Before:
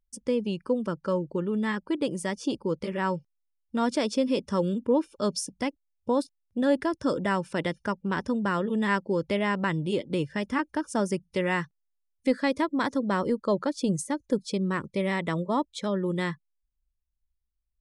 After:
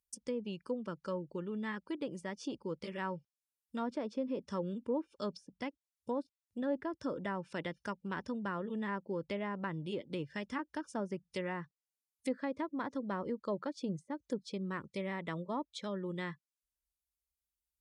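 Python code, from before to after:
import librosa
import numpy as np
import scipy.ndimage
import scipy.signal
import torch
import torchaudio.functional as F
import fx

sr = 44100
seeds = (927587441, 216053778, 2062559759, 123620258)

y = scipy.signal.sosfilt(scipy.signal.butter(2, 51.0, 'highpass', fs=sr, output='sos'), x)
y = F.preemphasis(torch.from_numpy(y), 0.8).numpy()
y = fx.env_lowpass_down(y, sr, base_hz=1100.0, full_db=-34.0)
y = y * librosa.db_to_amplitude(2.5)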